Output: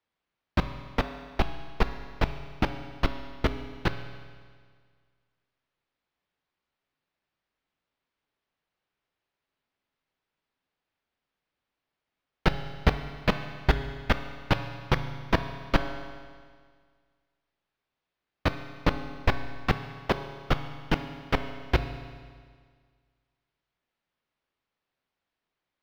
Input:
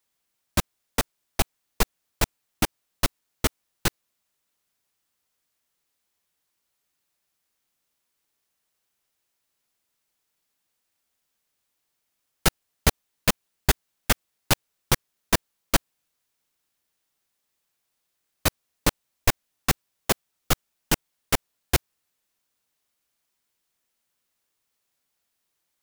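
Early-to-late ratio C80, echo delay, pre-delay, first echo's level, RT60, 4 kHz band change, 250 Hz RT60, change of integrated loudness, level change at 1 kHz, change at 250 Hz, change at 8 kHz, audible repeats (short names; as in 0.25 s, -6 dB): 11.0 dB, none, 7 ms, none, 1.8 s, -7.0 dB, 1.8 s, -3.5 dB, -0.5 dB, +0.5 dB, -24.5 dB, none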